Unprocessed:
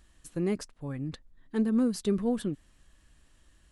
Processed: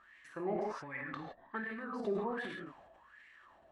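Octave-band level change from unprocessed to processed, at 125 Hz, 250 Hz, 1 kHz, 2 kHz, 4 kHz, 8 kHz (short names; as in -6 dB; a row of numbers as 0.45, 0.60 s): -14.5 dB, -14.0 dB, +5.0 dB, +7.0 dB, -9.5 dB, under -20 dB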